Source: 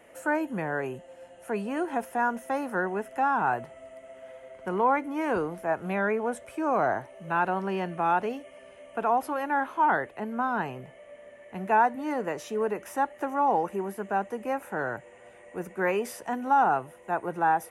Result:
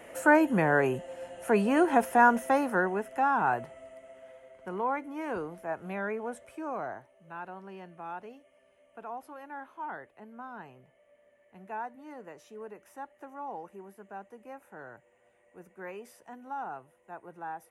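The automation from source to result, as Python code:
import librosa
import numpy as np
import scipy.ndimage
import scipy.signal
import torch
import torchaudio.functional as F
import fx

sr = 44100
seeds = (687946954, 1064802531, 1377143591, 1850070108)

y = fx.gain(x, sr, db=fx.line((2.36, 6.0), (3.01, -1.0), (3.68, -1.0), (4.53, -7.0), (6.5, -7.0), (7.15, -15.5)))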